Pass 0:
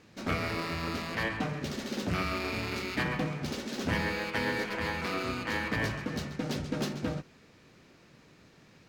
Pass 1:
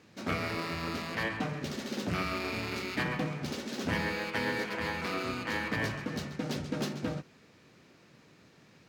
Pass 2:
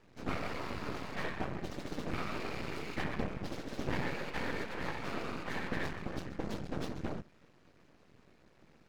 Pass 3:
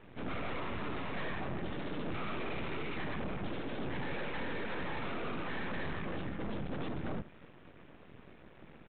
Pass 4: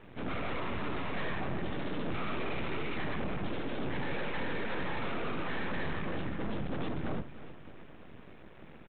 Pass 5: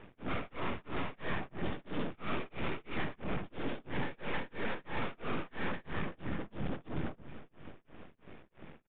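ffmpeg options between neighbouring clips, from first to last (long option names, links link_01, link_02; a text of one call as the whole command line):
ffmpeg -i in.wav -af "highpass=83,volume=-1dB" out.wav
ffmpeg -i in.wav -af "afftfilt=real='hypot(re,im)*cos(2*PI*random(0))':imag='hypot(re,im)*sin(2*PI*random(1))':win_size=512:overlap=0.75,aeval=exprs='max(val(0),0)':channel_layout=same,highshelf=frequency=2500:gain=-9,volume=7dB" out.wav
ffmpeg -i in.wav -af "alimiter=level_in=5.5dB:limit=-24dB:level=0:latency=1:release=15,volume=-5.5dB,aresample=8000,asoftclip=type=tanh:threshold=-38dB,aresample=44100,volume=8dB" out.wav
ffmpeg -i in.wav -af "aecho=1:1:315|630|945|1260|1575:0.168|0.0873|0.0454|0.0236|0.0123,volume=2.5dB" out.wav
ffmpeg -i in.wav -af "tremolo=f=3:d=0.99,aresample=8000,aresample=44100,volume=1.5dB" out.wav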